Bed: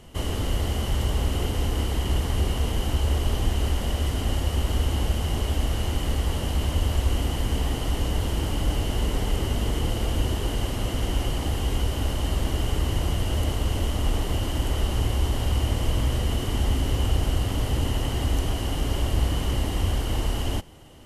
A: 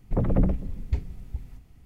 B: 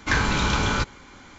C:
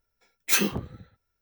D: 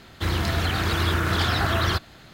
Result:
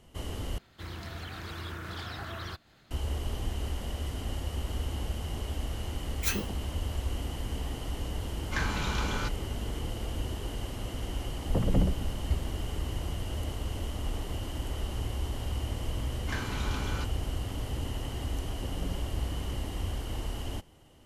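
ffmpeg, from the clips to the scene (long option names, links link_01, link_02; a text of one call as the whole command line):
ffmpeg -i bed.wav -i cue0.wav -i cue1.wav -i cue2.wav -i cue3.wav -filter_complex "[2:a]asplit=2[link_01][link_02];[1:a]asplit=2[link_03][link_04];[0:a]volume=-9.5dB[link_05];[4:a]acompressor=mode=upward:threshold=-37dB:ratio=2.5:attack=3.2:release=140:knee=2.83:detection=peak[link_06];[link_05]asplit=2[link_07][link_08];[link_07]atrim=end=0.584[link_09];[link_06]atrim=end=2.33,asetpts=PTS-STARTPTS,volume=-16.5dB[link_10];[link_08]atrim=start=2.906[link_11];[3:a]atrim=end=1.41,asetpts=PTS-STARTPTS,volume=-9dB,afade=type=in:duration=0.004:curve=hsin,afade=type=out:start_time=1.406:duration=0.004:curve=hsin,adelay=5740[link_12];[link_01]atrim=end=1.38,asetpts=PTS-STARTPTS,volume=-10.5dB,afade=type=in:duration=0.004:curve=hsin,afade=type=out:start_time=1.376:duration=0.004:curve=hsin,adelay=8450[link_13];[link_03]atrim=end=1.85,asetpts=PTS-STARTPTS,volume=-4dB,afade=type=in:duration=0.004:curve=hsin,afade=type=out:start_time=1.846:duration=0.004:curve=hsin,adelay=501858S[link_14];[link_02]atrim=end=1.38,asetpts=PTS-STARTPTS,volume=-15dB,afade=type=in:duration=0.004:curve=hsin,afade=type=out:start_time=1.376:duration=0.004:curve=hsin,adelay=16210[link_15];[link_04]atrim=end=1.85,asetpts=PTS-STARTPTS,volume=-17dB,afade=type=in:duration=0.004:curve=hsin,afade=type=out:start_time=1.846:duration=0.004:curve=hsin,adelay=18460[link_16];[link_09][link_10]acrossfade=duration=0.004:curve1=hsin:curve2=hsin[link_17];[link_17][link_11]acrossfade=duration=0.004:curve1=hsin:curve2=hsin[link_18];[link_18][link_12][link_13][link_14][link_15][link_16]amix=inputs=6:normalize=0" out.wav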